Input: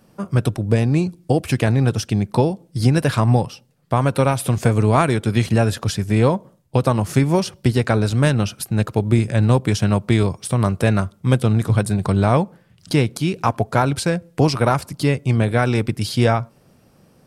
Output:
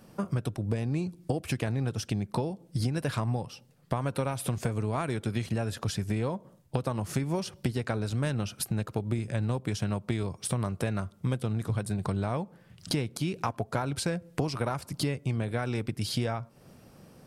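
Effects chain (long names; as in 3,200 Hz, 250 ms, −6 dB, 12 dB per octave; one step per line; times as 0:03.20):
downward compressor 5 to 1, threshold −28 dBFS, peak gain reduction 16.5 dB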